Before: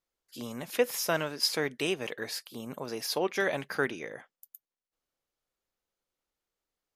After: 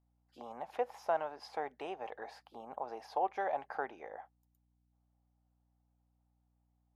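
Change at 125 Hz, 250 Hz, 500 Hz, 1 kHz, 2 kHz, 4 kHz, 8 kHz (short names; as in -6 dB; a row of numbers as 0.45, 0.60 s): under -20 dB, -15.5 dB, -7.5 dB, +2.0 dB, -13.5 dB, -23.0 dB, under -25 dB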